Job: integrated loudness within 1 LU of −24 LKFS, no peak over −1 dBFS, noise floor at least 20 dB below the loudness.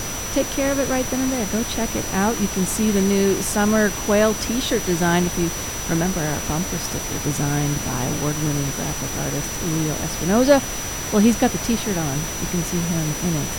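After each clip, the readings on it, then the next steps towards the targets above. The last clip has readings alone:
interfering tone 5,900 Hz; level of the tone −30 dBFS; background noise floor −28 dBFS; target noise floor −41 dBFS; integrated loudness −21.0 LKFS; sample peak −1.0 dBFS; target loudness −24.0 LKFS
→ notch filter 5,900 Hz, Q 30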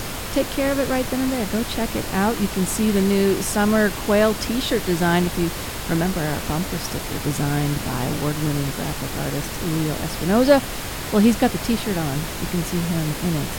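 interfering tone none found; background noise floor −30 dBFS; target noise floor −42 dBFS
→ noise reduction from a noise print 12 dB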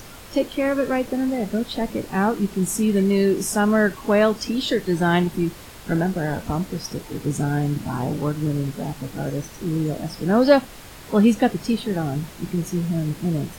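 background noise floor −41 dBFS; target noise floor −43 dBFS
→ noise reduction from a noise print 6 dB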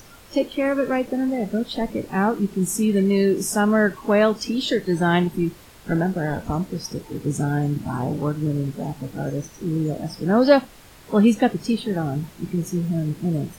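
background noise floor −47 dBFS; integrated loudness −22.5 LKFS; sample peak −1.5 dBFS; target loudness −24.0 LKFS
→ level −1.5 dB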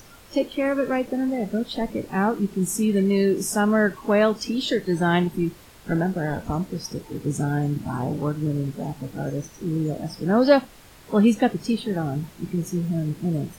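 integrated loudness −24.0 LKFS; sample peak −3.0 dBFS; background noise floor −48 dBFS

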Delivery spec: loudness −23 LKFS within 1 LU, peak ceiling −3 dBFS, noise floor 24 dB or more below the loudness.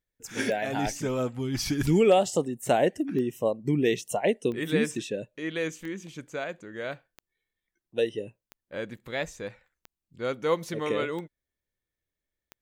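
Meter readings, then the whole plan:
number of clicks 10; integrated loudness −28.5 LKFS; sample peak −10.5 dBFS; target loudness −23.0 LKFS
→ click removal
level +5.5 dB

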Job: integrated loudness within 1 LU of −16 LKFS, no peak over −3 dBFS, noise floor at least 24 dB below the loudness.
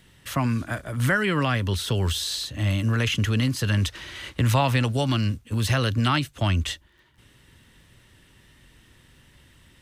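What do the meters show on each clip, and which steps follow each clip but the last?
crackle rate 17 per second; integrated loudness −24.5 LKFS; sample peak −8.5 dBFS; target loudness −16.0 LKFS
→ click removal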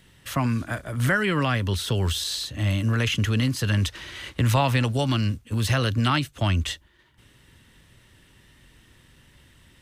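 crackle rate 0.20 per second; integrated loudness −24.5 LKFS; sample peak −8.5 dBFS; target loudness −16.0 LKFS
→ level +8.5 dB
brickwall limiter −3 dBFS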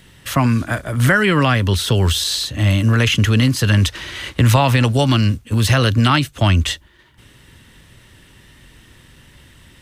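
integrated loudness −16.0 LKFS; sample peak −3.0 dBFS; background noise floor −49 dBFS

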